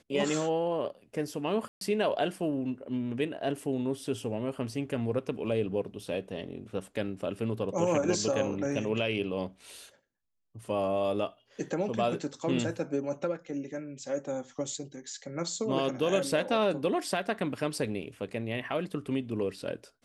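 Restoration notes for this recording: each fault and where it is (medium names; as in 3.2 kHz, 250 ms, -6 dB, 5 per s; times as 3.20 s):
1.68–1.81 s: dropout 132 ms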